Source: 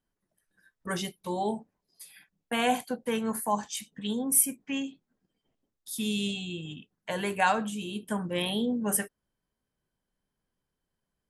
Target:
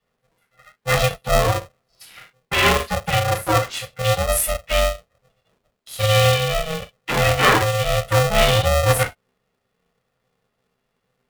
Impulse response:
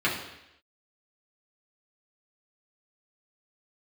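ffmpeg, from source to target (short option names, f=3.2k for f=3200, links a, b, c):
-filter_complex "[0:a]equalizer=f=65:w=1.5:g=7.5[a];[1:a]atrim=start_sample=2205,atrim=end_sample=3087[b];[a][b]afir=irnorm=-1:irlink=0,aeval=exprs='val(0)*sgn(sin(2*PI*320*n/s))':c=same"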